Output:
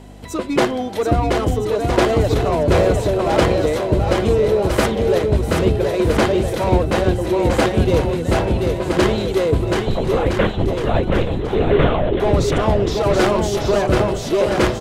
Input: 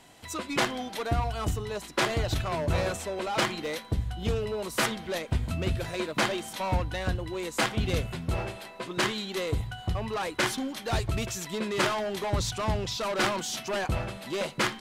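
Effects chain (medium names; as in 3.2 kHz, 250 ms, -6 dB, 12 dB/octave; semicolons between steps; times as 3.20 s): bass shelf 190 Hz +6.5 dB; hum 50 Hz, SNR 18 dB; peaking EQ 430 Hz +12 dB 1.9 oct; 9.77–12.20 s: LPC vocoder at 8 kHz whisper; bouncing-ball echo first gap 730 ms, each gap 0.8×, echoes 5; trim +2.5 dB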